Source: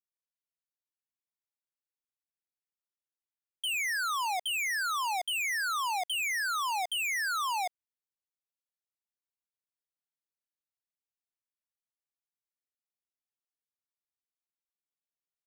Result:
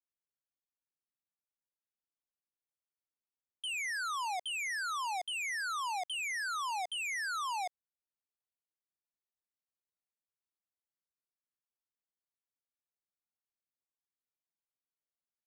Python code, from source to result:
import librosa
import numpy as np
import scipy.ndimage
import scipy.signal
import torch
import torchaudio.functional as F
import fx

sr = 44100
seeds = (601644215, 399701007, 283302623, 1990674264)

y = fx.wiener(x, sr, points=15)
y = scipy.signal.sosfilt(scipy.signal.butter(4, 11000.0, 'lowpass', fs=sr, output='sos'), y)
y = F.gain(torch.from_numpy(y), -4.0).numpy()